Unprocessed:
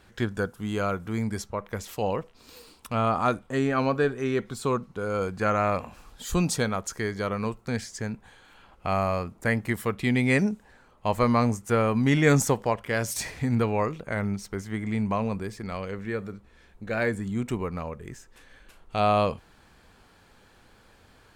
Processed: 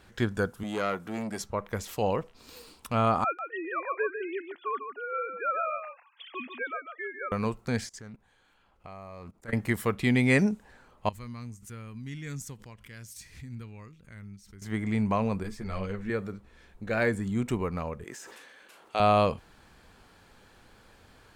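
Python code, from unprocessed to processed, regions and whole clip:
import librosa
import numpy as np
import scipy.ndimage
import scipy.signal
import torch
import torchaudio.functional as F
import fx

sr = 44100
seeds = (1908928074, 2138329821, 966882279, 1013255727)

y = fx.chain(x, sr, fx.highpass(hz=200.0, slope=12),
    fx.transformer_sat(knee_hz=1100.0), at=(0.63, 1.41))
y = fx.chain(y, sr, fx.sine_speech(),
    fx.highpass(hz=1500.0, slope=6),
    fx.echo_single(ms=147, db=-8.0), at=(3.24, 7.32))
y = fx.chain(y, sr, fx.level_steps(step_db=22),
    fx.doppler_dist(depth_ms=0.25), at=(7.87, 9.53))
y = fx.chain(y, sr, fx.tone_stack(knobs='6-0-2'),
    fx.pre_swell(db_per_s=110.0), at=(11.09, 14.62))
y = fx.chain(y, sr, fx.low_shelf(hz=73.0, db=11.5),
    fx.ensemble(), at=(15.43, 16.1))
y = fx.chain(y, sr, fx.highpass(hz=350.0, slope=12),
    fx.sustainer(db_per_s=26.0), at=(18.04, 19.0))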